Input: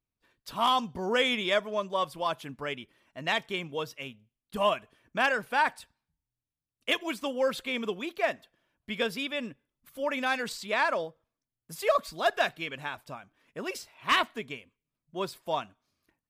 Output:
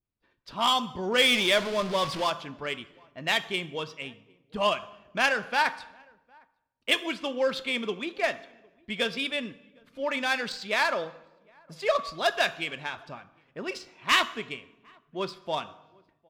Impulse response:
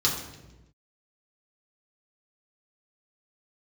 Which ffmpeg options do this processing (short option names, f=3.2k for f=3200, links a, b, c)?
-filter_complex "[0:a]asettb=1/sr,asplit=3[a][b][c];[a]atrim=end=1.184[d];[b]atrim=start=1.18:end=2.3,asetpts=PTS-STARTPTS,afade=t=in:d=0.004:c=qsin,afade=t=out:st=1.116:d=0.004:c=qsin,aeval=exprs='val(0)+0.5*0.0266*sgn(val(0))':c=same[e];[c]atrim=start=2.296[f];[d][e]acrossfade=d=0.004:c1=hsin:c2=qsin[g];[g][f]acrossfade=d=0.004:c1=qsin:c2=hsin,adynamicsmooth=sensitivity=4.5:basefreq=3.6k,asplit=2[h][i];[i]adelay=758,volume=-29dB,highshelf=f=4k:g=-17.1[j];[h][j]amix=inputs=2:normalize=0,asplit=2[k][l];[1:a]atrim=start_sample=2205,lowshelf=f=390:g=-8.5[m];[l][m]afir=irnorm=-1:irlink=0,volume=-20dB[n];[k][n]amix=inputs=2:normalize=0,adynamicequalizer=threshold=0.01:dfrequency=1700:dqfactor=0.7:tfrequency=1700:tqfactor=0.7:attack=5:release=100:ratio=0.375:range=2.5:mode=boostabove:tftype=highshelf"